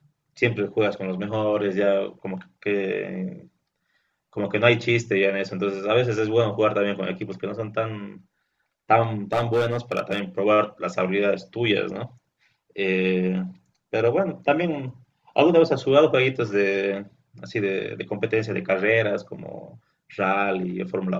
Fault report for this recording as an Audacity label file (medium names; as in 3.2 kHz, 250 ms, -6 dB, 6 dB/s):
9.330000	10.190000	clipped -17 dBFS